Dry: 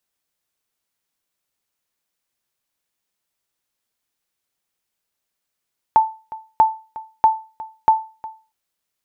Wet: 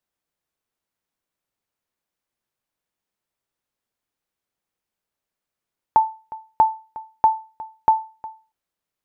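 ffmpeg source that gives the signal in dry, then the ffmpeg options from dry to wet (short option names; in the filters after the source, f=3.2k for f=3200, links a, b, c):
-f lavfi -i "aevalsrc='0.562*(sin(2*PI*882*mod(t,0.64))*exp(-6.91*mod(t,0.64)/0.33)+0.112*sin(2*PI*882*max(mod(t,0.64)-0.36,0))*exp(-6.91*max(mod(t,0.64)-0.36,0)/0.33))':d=2.56:s=44100"
-af "highshelf=f=2.1k:g=-9"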